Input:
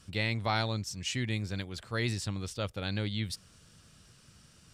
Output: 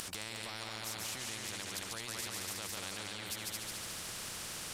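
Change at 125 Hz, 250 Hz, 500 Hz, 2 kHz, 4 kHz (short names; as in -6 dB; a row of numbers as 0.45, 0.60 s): -17.5, -13.0, -10.0, -5.5, -2.5 dB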